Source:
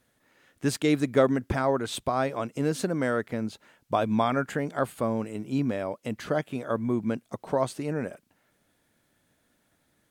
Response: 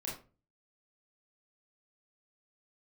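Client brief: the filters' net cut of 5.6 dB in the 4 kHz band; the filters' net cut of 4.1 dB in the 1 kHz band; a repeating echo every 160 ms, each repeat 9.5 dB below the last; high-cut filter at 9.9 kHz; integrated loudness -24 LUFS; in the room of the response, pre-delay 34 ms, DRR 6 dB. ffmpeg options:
-filter_complex "[0:a]lowpass=9900,equalizer=f=1000:t=o:g=-5.5,equalizer=f=4000:t=o:g=-6.5,aecho=1:1:160|320|480|640:0.335|0.111|0.0365|0.012,asplit=2[s0][s1];[1:a]atrim=start_sample=2205,adelay=34[s2];[s1][s2]afir=irnorm=-1:irlink=0,volume=0.473[s3];[s0][s3]amix=inputs=2:normalize=0,volume=1.5"

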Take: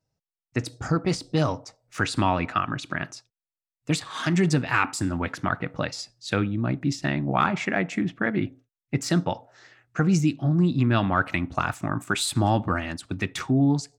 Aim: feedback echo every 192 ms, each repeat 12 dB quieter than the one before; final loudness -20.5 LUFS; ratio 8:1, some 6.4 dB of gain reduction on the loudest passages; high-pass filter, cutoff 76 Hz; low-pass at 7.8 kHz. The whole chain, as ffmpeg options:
-af "highpass=76,lowpass=7800,acompressor=threshold=0.0708:ratio=8,aecho=1:1:192|384|576:0.251|0.0628|0.0157,volume=2.99"

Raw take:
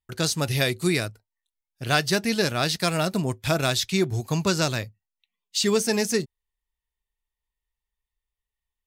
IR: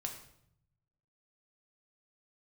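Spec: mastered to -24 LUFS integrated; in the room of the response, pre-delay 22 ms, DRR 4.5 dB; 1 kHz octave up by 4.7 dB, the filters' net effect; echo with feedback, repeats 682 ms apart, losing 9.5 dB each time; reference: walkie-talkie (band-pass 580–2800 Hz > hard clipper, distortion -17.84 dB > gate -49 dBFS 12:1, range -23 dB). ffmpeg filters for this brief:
-filter_complex "[0:a]equalizer=f=1000:t=o:g=8,aecho=1:1:682|1364|2046|2728:0.335|0.111|0.0365|0.012,asplit=2[s0][s1];[1:a]atrim=start_sample=2205,adelay=22[s2];[s1][s2]afir=irnorm=-1:irlink=0,volume=0.668[s3];[s0][s3]amix=inputs=2:normalize=0,highpass=580,lowpass=2800,asoftclip=type=hard:threshold=0.2,agate=range=0.0708:threshold=0.00355:ratio=12,volume=1.41"

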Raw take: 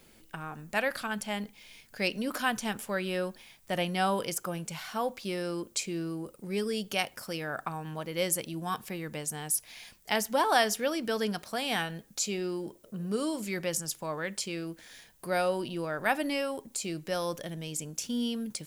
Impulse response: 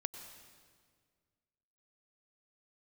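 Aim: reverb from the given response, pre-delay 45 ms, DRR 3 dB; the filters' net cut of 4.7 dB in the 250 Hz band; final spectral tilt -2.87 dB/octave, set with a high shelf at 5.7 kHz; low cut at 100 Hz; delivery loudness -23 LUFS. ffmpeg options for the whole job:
-filter_complex "[0:a]highpass=100,equalizer=f=250:t=o:g=-6.5,highshelf=f=5700:g=5,asplit=2[s0][s1];[1:a]atrim=start_sample=2205,adelay=45[s2];[s1][s2]afir=irnorm=-1:irlink=0,volume=0.794[s3];[s0][s3]amix=inputs=2:normalize=0,volume=2.37"

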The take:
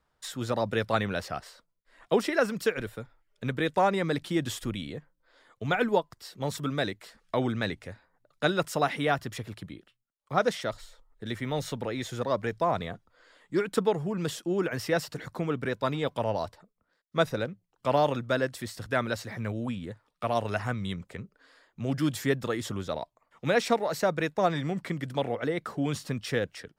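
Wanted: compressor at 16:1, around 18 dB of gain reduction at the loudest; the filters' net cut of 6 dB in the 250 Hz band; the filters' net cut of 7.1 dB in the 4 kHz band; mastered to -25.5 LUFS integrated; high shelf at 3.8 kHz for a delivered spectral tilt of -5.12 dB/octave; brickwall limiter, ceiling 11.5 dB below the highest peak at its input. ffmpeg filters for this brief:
-af "equalizer=f=250:t=o:g=-8.5,highshelf=f=3800:g=-3.5,equalizer=f=4000:t=o:g=-6.5,acompressor=threshold=0.0112:ratio=16,volume=13.3,alimiter=limit=0.2:level=0:latency=1"

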